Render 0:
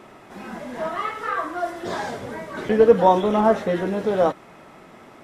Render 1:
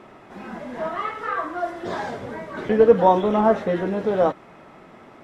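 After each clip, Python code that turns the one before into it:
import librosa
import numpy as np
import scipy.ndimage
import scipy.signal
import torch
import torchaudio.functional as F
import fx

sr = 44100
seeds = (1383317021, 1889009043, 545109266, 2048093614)

y = fx.lowpass(x, sr, hz=3200.0, slope=6)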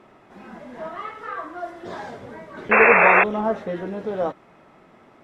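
y = fx.spec_paint(x, sr, seeds[0], shape='noise', start_s=2.71, length_s=0.53, low_hz=370.0, high_hz=2700.0, level_db=-9.0)
y = y * 10.0 ** (-5.5 / 20.0)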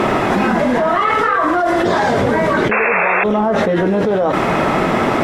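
y = fx.env_flatten(x, sr, amount_pct=100)
y = y * 10.0 ** (-3.5 / 20.0)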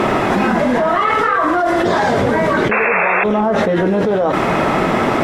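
y = x + 10.0 ** (-21.5 / 20.0) * np.pad(x, (int(170 * sr / 1000.0), 0))[:len(x)]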